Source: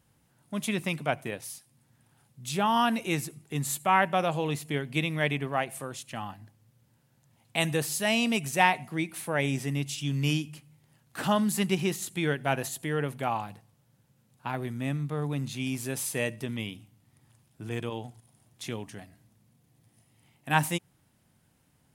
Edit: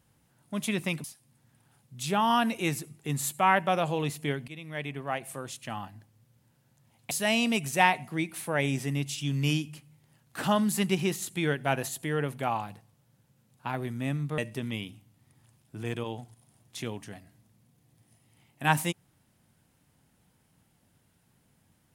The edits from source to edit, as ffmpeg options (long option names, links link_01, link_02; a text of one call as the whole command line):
ffmpeg -i in.wav -filter_complex "[0:a]asplit=5[link_01][link_02][link_03][link_04][link_05];[link_01]atrim=end=1.042[link_06];[link_02]atrim=start=1.498:end=4.94,asetpts=PTS-STARTPTS,afade=type=out:start_time=3.438:duration=0.004:curve=hsin:silence=0.11885[link_07];[link_03]atrim=start=4.94:end=7.572,asetpts=PTS-STARTPTS,afade=type=in:duration=1.03:silence=0.11885[link_08];[link_04]atrim=start=7.908:end=15.182[link_09];[link_05]atrim=start=16.238[link_10];[link_07][link_08]concat=n=2:v=0:a=1[link_11];[link_06][link_11]acrossfade=duration=0.004:curve1=hsin:curve2=hsin[link_12];[link_12][link_09]acrossfade=duration=0.004:curve1=hsin:curve2=hsin[link_13];[link_13][link_10]acrossfade=duration=0.004:curve1=hsin:curve2=hsin" out.wav